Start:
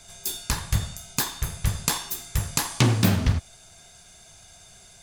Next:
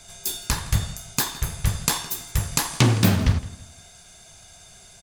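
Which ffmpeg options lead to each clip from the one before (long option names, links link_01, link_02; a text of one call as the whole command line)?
ffmpeg -i in.wav -filter_complex "[0:a]asplit=2[link_01][link_02];[link_02]adelay=164,lowpass=frequency=3900:poles=1,volume=-17dB,asplit=2[link_03][link_04];[link_04]adelay=164,lowpass=frequency=3900:poles=1,volume=0.35,asplit=2[link_05][link_06];[link_06]adelay=164,lowpass=frequency=3900:poles=1,volume=0.35[link_07];[link_01][link_03][link_05][link_07]amix=inputs=4:normalize=0,volume=2dB" out.wav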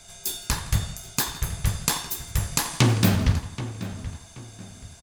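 ffmpeg -i in.wav -filter_complex "[0:a]asplit=2[link_01][link_02];[link_02]adelay=779,lowpass=frequency=2900:poles=1,volume=-13dB,asplit=2[link_03][link_04];[link_04]adelay=779,lowpass=frequency=2900:poles=1,volume=0.33,asplit=2[link_05][link_06];[link_06]adelay=779,lowpass=frequency=2900:poles=1,volume=0.33[link_07];[link_01][link_03][link_05][link_07]amix=inputs=4:normalize=0,volume=-1.5dB" out.wav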